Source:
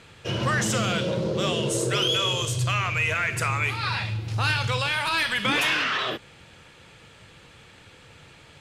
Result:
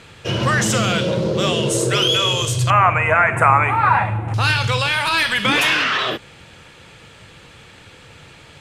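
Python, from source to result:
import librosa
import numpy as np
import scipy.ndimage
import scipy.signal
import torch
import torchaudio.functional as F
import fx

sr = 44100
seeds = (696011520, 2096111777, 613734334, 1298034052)

y = fx.curve_eq(x, sr, hz=(110.0, 280.0, 420.0, 780.0, 2100.0, 4900.0, 8700.0, 13000.0), db=(0, 5, 1, 15, 1, -27, -6, -18), at=(2.7, 4.34))
y = y * librosa.db_to_amplitude(6.5)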